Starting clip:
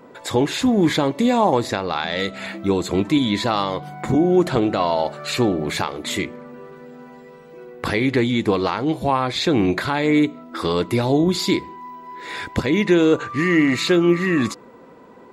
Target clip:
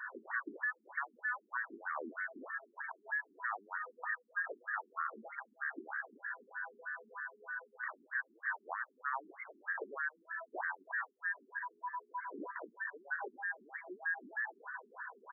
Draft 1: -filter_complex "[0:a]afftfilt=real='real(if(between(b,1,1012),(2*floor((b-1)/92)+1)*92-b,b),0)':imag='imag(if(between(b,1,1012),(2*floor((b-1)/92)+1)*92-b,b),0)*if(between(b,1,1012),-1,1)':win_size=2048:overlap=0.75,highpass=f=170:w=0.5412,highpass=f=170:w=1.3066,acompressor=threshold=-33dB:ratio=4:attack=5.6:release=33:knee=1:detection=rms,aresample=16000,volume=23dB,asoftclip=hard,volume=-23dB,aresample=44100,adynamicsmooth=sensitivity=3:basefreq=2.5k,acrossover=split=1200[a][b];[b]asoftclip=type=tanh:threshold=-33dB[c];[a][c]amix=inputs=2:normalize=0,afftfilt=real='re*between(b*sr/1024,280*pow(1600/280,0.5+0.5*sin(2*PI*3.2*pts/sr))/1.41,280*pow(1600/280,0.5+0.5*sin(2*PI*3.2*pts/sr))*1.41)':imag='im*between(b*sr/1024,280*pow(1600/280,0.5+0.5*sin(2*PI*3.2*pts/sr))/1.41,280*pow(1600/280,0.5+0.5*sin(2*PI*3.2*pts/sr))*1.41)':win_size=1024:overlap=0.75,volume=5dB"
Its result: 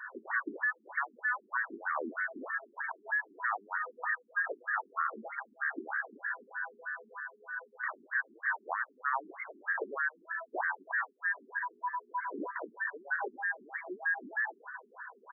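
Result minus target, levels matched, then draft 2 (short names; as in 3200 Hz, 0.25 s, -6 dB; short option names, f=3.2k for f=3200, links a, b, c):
compressor: peak gain reduction -6.5 dB
-filter_complex "[0:a]afftfilt=real='real(if(between(b,1,1012),(2*floor((b-1)/92)+1)*92-b,b),0)':imag='imag(if(between(b,1,1012),(2*floor((b-1)/92)+1)*92-b,b),0)*if(between(b,1,1012),-1,1)':win_size=2048:overlap=0.75,highpass=f=170:w=0.5412,highpass=f=170:w=1.3066,acompressor=threshold=-41.5dB:ratio=4:attack=5.6:release=33:knee=1:detection=rms,aresample=16000,volume=23dB,asoftclip=hard,volume=-23dB,aresample=44100,adynamicsmooth=sensitivity=3:basefreq=2.5k,acrossover=split=1200[a][b];[b]asoftclip=type=tanh:threshold=-33dB[c];[a][c]amix=inputs=2:normalize=0,afftfilt=real='re*between(b*sr/1024,280*pow(1600/280,0.5+0.5*sin(2*PI*3.2*pts/sr))/1.41,280*pow(1600/280,0.5+0.5*sin(2*PI*3.2*pts/sr))*1.41)':imag='im*between(b*sr/1024,280*pow(1600/280,0.5+0.5*sin(2*PI*3.2*pts/sr))/1.41,280*pow(1600/280,0.5+0.5*sin(2*PI*3.2*pts/sr))*1.41)':win_size=1024:overlap=0.75,volume=5dB"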